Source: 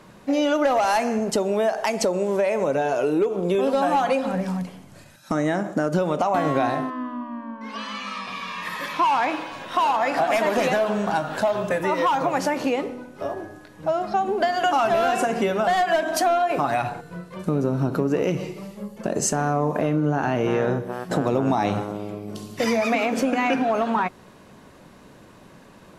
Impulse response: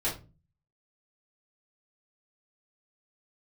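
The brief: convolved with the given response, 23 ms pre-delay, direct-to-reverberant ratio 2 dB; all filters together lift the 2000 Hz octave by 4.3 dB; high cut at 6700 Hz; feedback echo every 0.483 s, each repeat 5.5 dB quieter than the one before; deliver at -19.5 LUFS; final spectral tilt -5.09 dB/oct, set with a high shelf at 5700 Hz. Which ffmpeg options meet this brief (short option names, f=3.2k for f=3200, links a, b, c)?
-filter_complex "[0:a]lowpass=6.7k,equalizer=f=2k:t=o:g=4.5,highshelf=f=5.7k:g=8,aecho=1:1:483|966|1449|1932|2415|2898|3381:0.531|0.281|0.149|0.079|0.0419|0.0222|0.0118,asplit=2[a][b];[1:a]atrim=start_sample=2205,adelay=23[c];[b][c]afir=irnorm=-1:irlink=0,volume=-9.5dB[d];[a][d]amix=inputs=2:normalize=0,volume=-1dB"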